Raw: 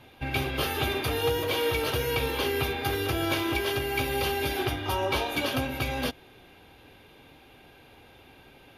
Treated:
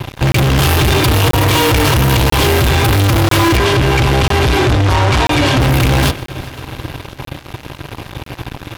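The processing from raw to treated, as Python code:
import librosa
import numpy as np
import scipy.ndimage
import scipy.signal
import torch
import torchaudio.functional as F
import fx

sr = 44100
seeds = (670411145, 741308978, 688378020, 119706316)

y = fx.low_shelf_res(x, sr, hz=170.0, db=9.5, q=3.0)
y = fx.notch(y, sr, hz=490.0, q=12.0)
y = fx.small_body(y, sr, hz=(300.0, 1000.0), ring_ms=45, db=12)
y = fx.fuzz(y, sr, gain_db=37.0, gate_db=-45.0)
y = fx.air_absorb(y, sr, metres=54.0, at=(3.57, 5.61))
y = fx.echo_heads(y, sr, ms=129, heads='first and third', feedback_pct=68, wet_db=-22)
y = fx.buffer_crackle(y, sr, first_s=0.32, period_s=0.99, block=1024, kind='zero')
y = F.gain(torch.from_numpy(y), 3.0).numpy()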